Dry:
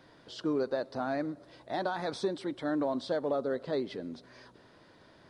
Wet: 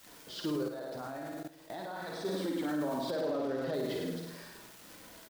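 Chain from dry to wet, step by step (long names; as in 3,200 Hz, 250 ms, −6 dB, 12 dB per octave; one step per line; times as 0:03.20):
one scale factor per block 5 bits
noise gate with hold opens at −48 dBFS
bit-depth reduction 10 bits, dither triangular
0:03.10–0:03.74: Butterworth low-pass 5,500 Hz
flutter between parallel walls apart 9.1 metres, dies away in 0.9 s
surface crackle 330 per second −42 dBFS
flanger 0.4 Hz, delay 3.7 ms, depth 4.1 ms, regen −45%
single-tap delay 100 ms −7 dB
brickwall limiter −30 dBFS, peak gain reduction 10.5 dB
0:00.68–0:02.25: output level in coarse steps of 15 dB
level +4 dB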